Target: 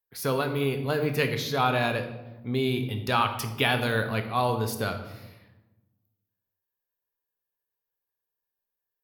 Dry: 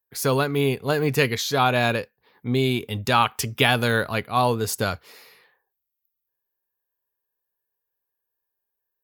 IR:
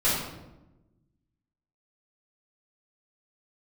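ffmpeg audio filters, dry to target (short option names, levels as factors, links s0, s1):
-filter_complex "[0:a]equalizer=f=7400:w=2.4:g=-9,asplit=2[s0][s1];[1:a]atrim=start_sample=2205,adelay=16[s2];[s1][s2]afir=irnorm=-1:irlink=0,volume=0.1[s3];[s0][s3]amix=inputs=2:normalize=0,volume=0.531"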